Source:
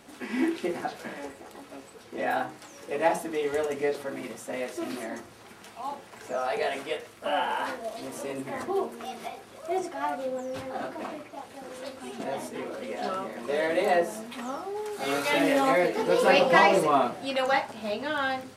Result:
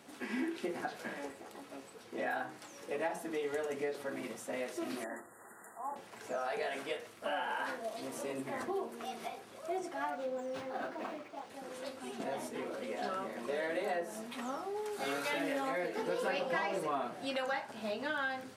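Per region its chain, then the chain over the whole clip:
0:05.04–0:05.96: linear-phase brick-wall band-stop 2,000–6,800 Hz + low-shelf EQ 250 Hz −11.5 dB + one half of a high-frequency compander encoder only
0:10.10–0:11.50: high-pass filter 170 Hz 6 dB per octave + linearly interpolated sample-rate reduction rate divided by 3×
whole clip: high-pass filter 110 Hz; dynamic equaliser 1,600 Hz, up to +6 dB, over −48 dBFS, Q 6.1; downward compressor 4 to 1, threshold −29 dBFS; level −4.5 dB

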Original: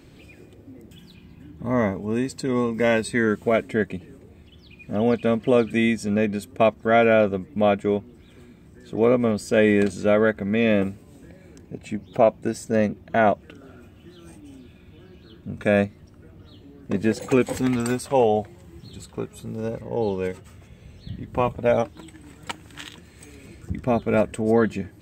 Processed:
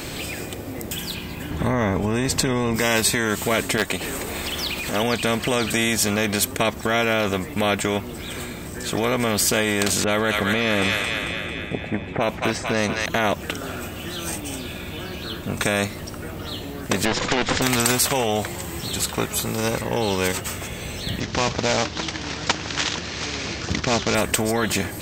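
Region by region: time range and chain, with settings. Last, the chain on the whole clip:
0:01.51–0:02.76: spectral tilt −3.5 dB per octave + one half of a high-frequency compander encoder only
0:03.77–0:05.03: parametric band 120 Hz −13 dB 1.9 octaves + hard clipping −15 dBFS + upward compression, threshold −33 dBFS
0:10.04–0:13.06: low-pass that shuts in the quiet parts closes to 560 Hz, open at −13.5 dBFS + delay with a high-pass on its return 223 ms, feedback 48%, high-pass 1,600 Hz, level −3 dB
0:17.05–0:17.62: lower of the sound and its delayed copy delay 0.57 ms + Bessel low-pass filter 3,400 Hz, order 8
0:21.20–0:24.15: variable-slope delta modulation 32 kbit/s + high-pass filter 57 Hz
whole clip: high-shelf EQ 5,900 Hz +9 dB; boost into a limiter +15 dB; every bin compressed towards the loudest bin 2 to 1; level −1 dB

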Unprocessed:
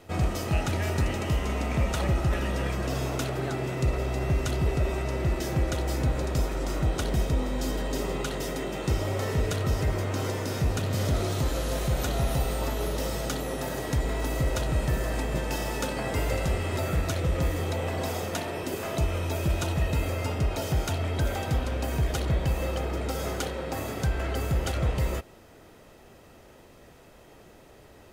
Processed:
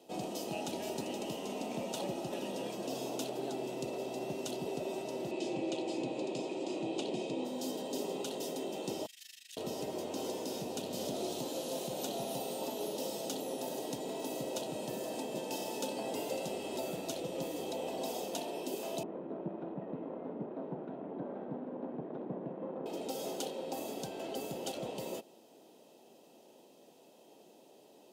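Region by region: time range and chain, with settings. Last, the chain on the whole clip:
0:05.31–0:07.45: loudspeaker in its box 120–7,500 Hz, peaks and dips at 120 Hz +5 dB, 340 Hz +7 dB, 1,500 Hz −7 dB, 2,500 Hz +8 dB, 5,800 Hz −7 dB + mains-hum notches 50/100/150/200/250/300/350/400 Hz
0:09.06–0:09.57: elliptic high-pass filter 1,700 Hz + amplitude modulation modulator 25 Hz, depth 80%
0:19.03–0:22.86: lower of the sound and its delayed copy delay 0.53 ms + low-pass filter 1,500 Hz 24 dB per octave + low shelf with overshoot 110 Hz −10.5 dB, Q 1.5
whole clip: high-pass filter 210 Hz 24 dB per octave; flat-topped bell 1,600 Hz −14.5 dB 1.2 octaves; level −5.5 dB

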